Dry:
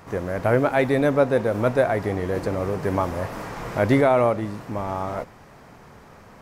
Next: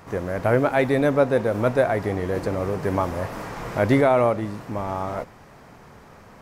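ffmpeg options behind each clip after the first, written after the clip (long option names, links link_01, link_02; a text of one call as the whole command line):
ffmpeg -i in.wav -af anull out.wav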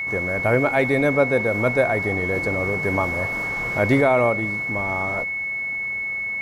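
ffmpeg -i in.wav -af "aeval=exprs='val(0)+0.0631*sin(2*PI*2200*n/s)':channel_layout=same" out.wav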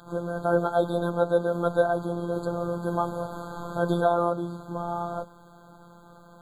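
ffmpeg -i in.wav -af "acrusher=bits=10:mix=0:aa=0.000001,afftfilt=real='hypot(re,im)*cos(PI*b)':imag='0':win_size=1024:overlap=0.75,afftfilt=real='re*eq(mod(floor(b*sr/1024/1600),2),0)':imag='im*eq(mod(floor(b*sr/1024/1600),2),0)':win_size=1024:overlap=0.75" out.wav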